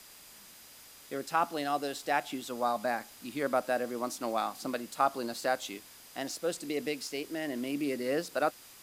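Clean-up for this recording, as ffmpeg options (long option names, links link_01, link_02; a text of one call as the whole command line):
ffmpeg -i in.wav -af "bandreject=frequency=4900:width=30,afwtdn=0.0025" out.wav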